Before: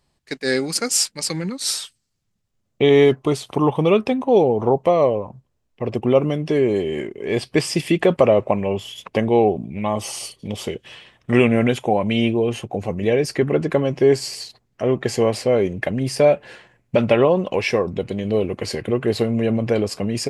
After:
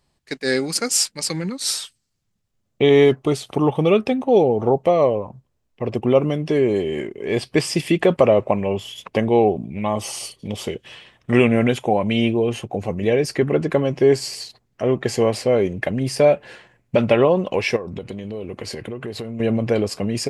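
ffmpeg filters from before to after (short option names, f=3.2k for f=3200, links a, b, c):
-filter_complex "[0:a]asettb=1/sr,asplit=3[a][b][c];[a]atrim=end=3.204[d];[b]atrim=start=3.2:end=4.99,asetpts=PTS-STARTPTS,afade=t=in:d=0.004:c=qsin,afade=t=out:st=1.786:d=0.004:c=qsin,bandreject=f=1k:w=6.2[e];[c]atrim=start=4.986[f];[d][e]acrossfade=d=0.004:c1=hsin:c2=qsin[g];[g][f]acrossfade=d=0.004:c1=qsin:c2=hsin,asettb=1/sr,asplit=3[h][i][j];[h]atrim=end=17.764[k];[i]atrim=start=17.76:end=19.4,asetpts=PTS-STARTPTS,afade=t=in:d=0.004:c=qsin,afade=t=out:st=1.636:d=0.004:c=qsin,acompressor=threshold=-26dB:ratio=6:attack=3.2:release=140:knee=1:detection=peak[l];[j]atrim=start=19.396[m];[k][l]acrossfade=d=0.004:c1=hsin:c2=qsin[n];[n][m]acrossfade=d=0.004:c1=qsin:c2=hsin"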